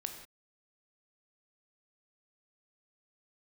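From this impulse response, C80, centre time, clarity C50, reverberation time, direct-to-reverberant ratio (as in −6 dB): 9.0 dB, 22 ms, 7.0 dB, non-exponential decay, 4.5 dB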